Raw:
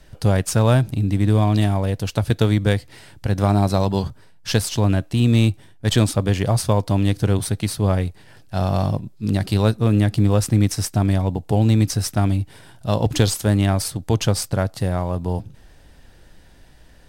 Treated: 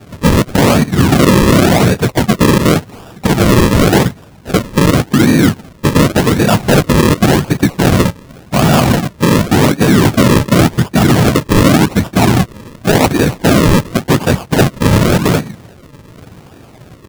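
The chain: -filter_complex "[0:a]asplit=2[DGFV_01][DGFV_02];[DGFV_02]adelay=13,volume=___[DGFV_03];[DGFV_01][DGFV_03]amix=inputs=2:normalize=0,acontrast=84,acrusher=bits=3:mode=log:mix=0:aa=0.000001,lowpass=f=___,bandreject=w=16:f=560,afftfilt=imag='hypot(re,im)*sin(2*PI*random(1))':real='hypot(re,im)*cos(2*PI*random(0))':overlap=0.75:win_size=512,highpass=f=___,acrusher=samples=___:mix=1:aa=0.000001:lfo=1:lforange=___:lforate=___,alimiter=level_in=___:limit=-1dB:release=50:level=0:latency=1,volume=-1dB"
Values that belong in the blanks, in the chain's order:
-10.5dB, 1300, 140, 41, 41, 0.89, 17dB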